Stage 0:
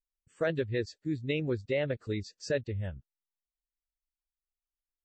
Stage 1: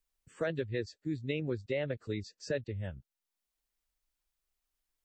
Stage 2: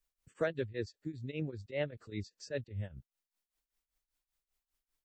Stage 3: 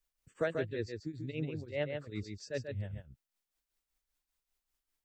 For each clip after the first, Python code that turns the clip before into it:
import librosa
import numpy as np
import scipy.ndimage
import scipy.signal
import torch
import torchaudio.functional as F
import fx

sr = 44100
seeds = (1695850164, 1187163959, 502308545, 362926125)

y1 = fx.band_squash(x, sr, depth_pct=40)
y1 = y1 * 10.0 ** (-3.5 / 20.0)
y2 = fx.tremolo_shape(y1, sr, shape='triangle', hz=5.1, depth_pct=95)
y2 = y2 * 10.0 ** (2.5 / 20.0)
y3 = y2 + 10.0 ** (-5.5 / 20.0) * np.pad(y2, (int(139 * sr / 1000.0), 0))[:len(y2)]